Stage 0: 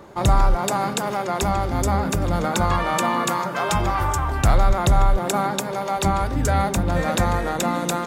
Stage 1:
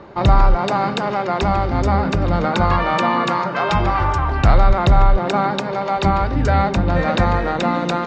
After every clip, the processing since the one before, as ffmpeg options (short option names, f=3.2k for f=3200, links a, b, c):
-af "lowpass=f=4.6k:w=0.5412,lowpass=f=4.6k:w=1.3066,bandreject=f=3.4k:w=13,volume=4dB"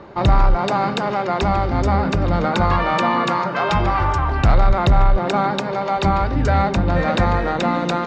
-af "asoftclip=type=tanh:threshold=-5dB"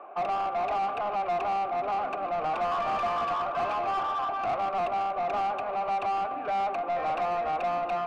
-filter_complex "[0:a]asplit=3[a][b][c];[a]bandpass=f=730:t=q:w=8,volume=0dB[d];[b]bandpass=f=1.09k:t=q:w=8,volume=-6dB[e];[c]bandpass=f=2.44k:t=q:w=8,volume=-9dB[f];[d][e][f]amix=inputs=3:normalize=0,highpass=f=210:w=0.5412,highpass=f=210:w=1.3066,equalizer=f=530:t=q:w=4:g=-5,equalizer=f=940:t=q:w=4:g=-3,equalizer=f=1.9k:t=q:w=4:g=5,lowpass=f=3.1k:w=0.5412,lowpass=f=3.1k:w=1.3066,asplit=2[g][h];[h]highpass=f=720:p=1,volume=22dB,asoftclip=type=tanh:threshold=-16dB[i];[g][i]amix=inputs=2:normalize=0,lowpass=f=1.4k:p=1,volume=-6dB,volume=-4.5dB"